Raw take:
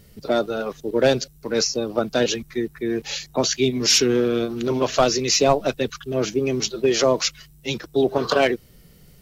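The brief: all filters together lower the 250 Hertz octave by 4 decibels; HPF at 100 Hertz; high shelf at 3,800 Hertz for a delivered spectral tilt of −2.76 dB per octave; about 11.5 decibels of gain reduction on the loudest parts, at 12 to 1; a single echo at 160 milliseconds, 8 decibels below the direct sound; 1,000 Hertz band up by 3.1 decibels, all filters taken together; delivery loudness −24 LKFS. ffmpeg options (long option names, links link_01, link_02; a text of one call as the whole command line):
ffmpeg -i in.wav -af "highpass=100,equalizer=frequency=250:width_type=o:gain=-5.5,equalizer=frequency=1000:width_type=o:gain=4.5,highshelf=frequency=3800:gain=4,acompressor=threshold=-23dB:ratio=12,aecho=1:1:160:0.398,volume=3.5dB" out.wav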